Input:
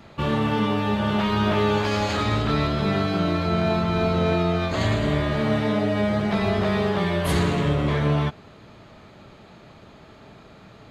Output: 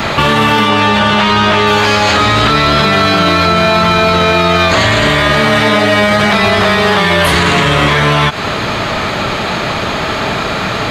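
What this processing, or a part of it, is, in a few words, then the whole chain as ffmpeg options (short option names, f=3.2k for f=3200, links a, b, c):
mastering chain: -filter_complex "[0:a]equalizer=f=1.3k:t=o:w=2.8:g=3.5,acrossover=split=930|5300[a][b][c];[a]acompressor=threshold=-30dB:ratio=4[d];[b]acompressor=threshold=-34dB:ratio=4[e];[c]acompressor=threshold=-51dB:ratio=4[f];[d][e][f]amix=inputs=3:normalize=0,acompressor=threshold=-33dB:ratio=2,asoftclip=type=tanh:threshold=-24dB,tiltshelf=f=920:g=-4,asoftclip=type=hard:threshold=-26dB,alimiter=level_in=32dB:limit=-1dB:release=50:level=0:latency=1,asettb=1/sr,asplit=3[g][h][i];[g]atrim=end=0.694[j];[h]atrim=start=0.69:end=1.67,asetpts=PTS-STARTPTS,afade=t=in:d=0.004:c=qsin,afade=t=out:st=0.976:d=0.004:c=qsin,lowpass=8.1k[k];[i]atrim=start=1.666[l];[j][k]acrossfade=d=0.004:c1=hsin:c2=qsin[m];[m][l]acrossfade=d=0.004:c1=qsin:c2=hsin,volume=-1.5dB"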